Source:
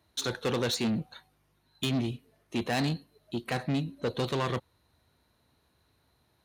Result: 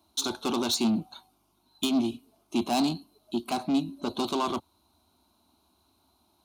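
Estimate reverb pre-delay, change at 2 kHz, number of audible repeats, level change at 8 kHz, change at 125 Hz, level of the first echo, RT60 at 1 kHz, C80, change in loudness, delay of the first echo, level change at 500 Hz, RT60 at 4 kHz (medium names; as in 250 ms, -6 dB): no reverb, -5.0 dB, no echo, +5.5 dB, -9.0 dB, no echo, no reverb, no reverb, +2.5 dB, no echo, -0.5 dB, no reverb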